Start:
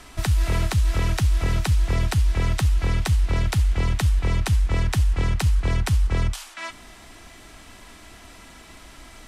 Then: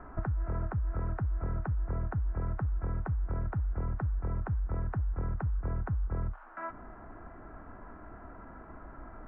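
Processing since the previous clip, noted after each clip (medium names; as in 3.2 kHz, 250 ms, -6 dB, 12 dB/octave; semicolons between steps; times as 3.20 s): compression 4:1, threshold -30 dBFS, peak gain reduction 12 dB; elliptic low-pass 1.5 kHz, stop band 80 dB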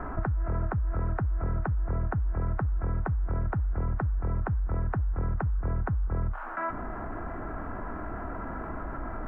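level flattener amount 50%; trim +2.5 dB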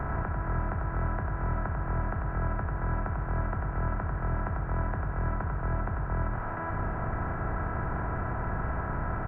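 spectral levelling over time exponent 0.2; delay 94 ms -4.5 dB; trim -8.5 dB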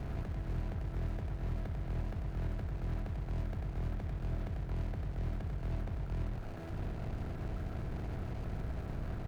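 median filter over 41 samples; trim -6 dB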